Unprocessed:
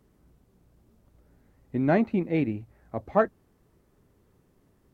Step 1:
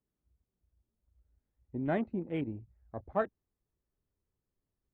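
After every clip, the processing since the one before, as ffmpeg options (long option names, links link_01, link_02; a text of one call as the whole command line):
ffmpeg -i in.wav -af "afwtdn=0.0112,asubboost=boost=2.5:cutoff=98,volume=-8.5dB" out.wav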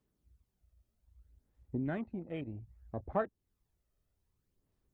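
ffmpeg -i in.wav -af "acompressor=threshold=-44dB:ratio=2,aphaser=in_gain=1:out_gain=1:delay=1.6:decay=0.42:speed=0.63:type=sinusoidal,volume=3dB" out.wav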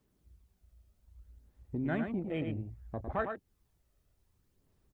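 ffmpeg -i in.wav -filter_complex "[0:a]acrossover=split=1200[link_01][link_02];[link_01]alimiter=level_in=9dB:limit=-24dB:level=0:latency=1:release=62,volume=-9dB[link_03];[link_03][link_02]amix=inputs=2:normalize=0,asplit=2[link_04][link_05];[link_05]adelay=105,volume=-6dB,highshelf=frequency=4000:gain=-2.36[link_06];[link_04][link_06]amix=inputs=2:normalize=0,volume=6dB" out.wav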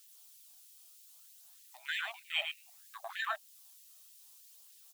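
ffmpeg -i in.wav -af "aexciter=amount=5.1:drive=5:freq=2800,afftfilt=real='re*gte(b*sr/1024,590*pow(1700/590,0.5+0.5*sin(2*PI*3.2*pts/sr)))':imag='im*gte(b*sr/1024,590*pow(1700/590,0.5+0.5*sin(2*PI*3.2*pts/sr)))':win_size=1024:overlap=0.75,volume=8dB" out.wav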